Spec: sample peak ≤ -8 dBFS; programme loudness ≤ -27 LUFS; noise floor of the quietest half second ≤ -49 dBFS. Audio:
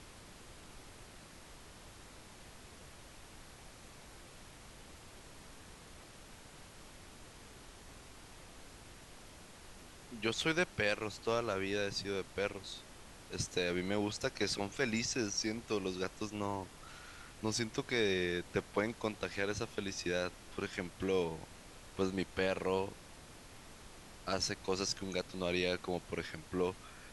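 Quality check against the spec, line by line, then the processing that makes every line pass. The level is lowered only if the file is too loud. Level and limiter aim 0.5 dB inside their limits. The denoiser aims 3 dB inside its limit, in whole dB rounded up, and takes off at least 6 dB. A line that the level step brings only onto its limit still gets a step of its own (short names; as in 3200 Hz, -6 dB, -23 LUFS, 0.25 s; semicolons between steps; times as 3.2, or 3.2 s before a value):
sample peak -17.5 dBFS: OK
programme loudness -37.0 LUFS: OK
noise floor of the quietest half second -54 dBFS: OK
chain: none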